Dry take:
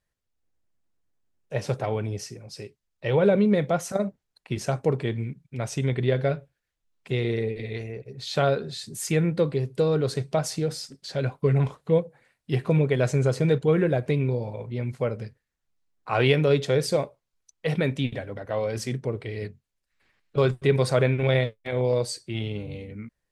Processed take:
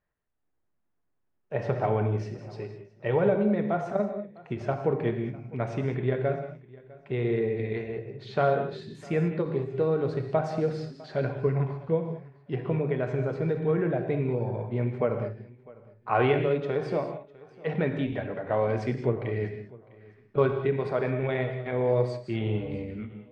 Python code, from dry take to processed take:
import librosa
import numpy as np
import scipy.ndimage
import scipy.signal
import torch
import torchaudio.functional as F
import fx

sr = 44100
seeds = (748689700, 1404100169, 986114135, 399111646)

y = fx.notch(x, sr, hz=520.0, q=12.0)
y = fx.rider(y, sr, range_db=4, speed_s=0.5)
y = scipy.signal.sosfilt(scipy.signal.butter(2, 1700.0, 'lowpass', fs=sr, output='sos'), y)
y = fx.low_shelf(y, sr, hz=180.0, db=-6.0)
y = fx.hum_notches(y, sr, base_hz=50, count=3)
y = fx.echo_feedback(y, sr, ms=653, feedback_pct=22, wet_db=-22.0)
y = fx.rev_gated(y, sr, seeds[0], gate_ms=230, shape='flat', drr_db=5.5)
y = fx.end_taper(y, sr, db_per_s=170.0)